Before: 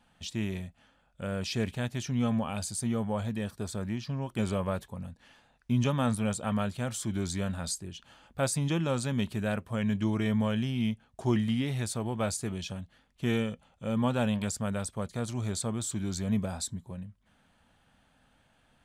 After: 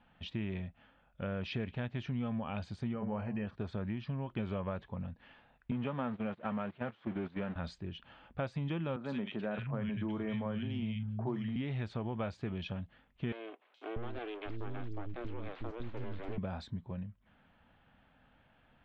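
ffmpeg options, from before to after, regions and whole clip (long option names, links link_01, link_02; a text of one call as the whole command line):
ffmpeg -i in.wav -filter_complex "[0:a]asettb=1/sr,asplit=3[link_01][link_02][link_03];[link_01]atrim=end=2.934[link_04];[link_02]atrim=start=2.93:end=3.47,asetpts=PTS-STARTPTS,afade=type=in:duration=0.004:curve=qsin,afade=type=out:start_time=0.536:duration=0.004:curve=qsin,asuperstop=centerf=3600:order=12:qfactor=3.3,asplit=2[link_05][link_06];[link_06]adelay=14,volume=-12dB[link_07];[link_05][link_07]amix=inputs=2:normalize=0,atrim=end_sample=23814,bandreject=frequency=56.55:width_type=h:width=4,bandreject=frequency=113.1:width_type=h:width=4,bandreject=frequency=169.65:width_type=h:width=4,bandreject=frequency=226.2:width_type=h:width=4,bandreject=frequency=282.75:width_type=h:width=4,bandreject=frequency=339.3:width_type=h:width=4,bandreject=frequency=395.85:width_type=h:width=4,bandreject=frequency=452.4:width_type=h:width=4,bandreject=frequency=508.95:width_type=h:width=4,bandreject=frequency=565.5:width_type=h:width=4,bandreject=frequency=622.05:width_type=h:width=4,bandreject=frequency=678.6:width_type=h:width=4,bandreject=frequency=735.15:width_type=h:width=4,bandreject=frequency=791.7:width_type=h:width=4,bandreject=frequency=848.25:width_type=h:width=4,bandreject=frequency=904.8:width_type=h:width=4,bandreject=frequency=961.35:width_type=h:width=4,bandreject=frequency=1017.9:width_type=h:width=4,bandreject=frequency=1074.45:width_type=h:width=4[link_08];[link_03]atrim=start=3.466[link_09];[link_04][link_08]acrossfade=duration=0.004:curve1=hsin:curve2=qsin[link_10];[link_10][link_09]acrossfade=duration=0.004:curve1=qsin:curve2=hsin,asettb=1/sr,asplit=3[link_11][link_12][link_13];[link_11]atrim=end=5.714[link_14];[link_12]atrim=start=5.71:end=7.56,asetpts=PTS-STARTPTS,afade=type=in:duration=0.004:curve=qsin,afade=type=out:start_time=1.846:duration=0.004:curve=qsin,aeval=exprs='val(0)+0.5*0.0188*sgn(val(0))':channel_layout=same,highpass=180,lowpass=2600,agate=range=-15dB:threshold=-35dB:ratio=16:release=100:detection=peak[link_15];[link_13]atrim=start=7.556[link_16];[link_14][link_15]acrossfade=duration=0.004:curve1=hsin:curve2=qsin[link_17];[link_17][link_16]acrossfade=duration=0.004:curve1=qsin:curve2=hsin,asettb=1/sr,asplit=3[link_18][link_19][link_20];[link_18]atrim=end=8.964[link_21];[link_19]atrim=start=8.96:end=11.56,asetpts=PTS-STARTPTS,afade=type=in:duration=0.004:curve=qsin,afade=type=out:start_time=2.596:duration=0.004:curve=qsin,asplit=2[link_22][link_23];[link_23]adelay=43,volume=-14dB[link_24];[link_22][link_24]amix=inputs=2:normalize=0,atrim=end_sample=114660,acrossover=split=170|1800[link_25][link_26][link_27];[link_27]adelay=80[link_28];[link_25]adelay=620[link_29];[link_29][link_26][link_28]amix=inputs=3:normalize=0,atrim=end_sample=114660[link_30];[link_20]atrim=start=11.556[link_31];[link_21][link_30]acrossfade=duration=0.004:curve1=hsin:curve2=qsin[link_32];[link_32][link_31]acrossfade=duration=0.004:curve1=qsin:curve2=hsin,asettb=1/sr,asplit=3[link_33][link_34][link_35];[link_33]atrim=end=13.324[link_36];[link_34]atrim=start=13.32:end=16.38,asetpts=PTS-STARTPTS,afade=type=in:duration=0.004:curve=qsin,afade=type=out:start_time=3.056:duration=0.004:curve=qsin,acrossover=split=290|3900[link_37][link_38][link_39];[link_37]acompressor=threshold=-31dB:ratio=4[link_40];[link_38]acompressor=threshold=-41dB:ratio=4[link_41];[link_39]acompressor=threshold=-46dB:ratio=4[link_42];[link_40][link_41][link_42]amix=inputs=3:normalize=0,aeval=exprs='abs(val(0))':channel_layout=same,acrossover=split=320|4700[link_43][link_44][link_45];[link_45]adelay=420[link_46];[link_43]adelay=640[link_47];[link_47][link_44][link_46]amix=inputs=3:normalize=0,atrim=end_sample=134946[link_48];[link_35]atrim=start=16.376[link_49];[link_36][link_48]acrossfade=duration=0.004:curve1=hsin:curve2=qsin[link_50];[link_50][link_49]acrossfade=duration=0.004:curve1=qsin:curve2=hsin,lowpass=frequency=3100:width=0.5412,lowpass=frequency=3100:width=1.3066,acompressor=threshold=-34dB:ratio=4" out.wav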